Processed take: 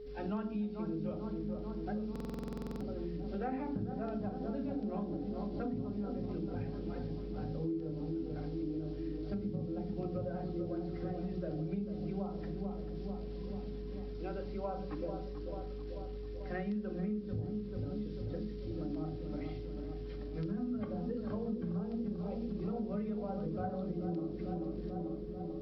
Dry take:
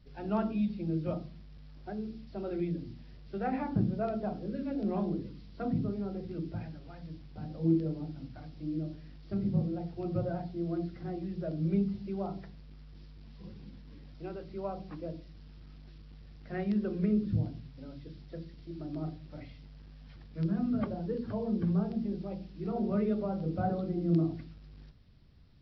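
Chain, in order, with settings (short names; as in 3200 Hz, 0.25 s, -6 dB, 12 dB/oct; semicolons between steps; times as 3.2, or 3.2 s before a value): analogue delay 0.44 s, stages 4096, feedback 62%, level -8.5 dB; reverb, pre-delay 4 ms, DRR 5.5 dB; compressor 6:1, threshold -36 dBFS, peak gain reduction 13.5 dB; whine 420 Hz -46 dBFS; stuck buffer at 2.11, samples 2048, times 14; gain +1 dB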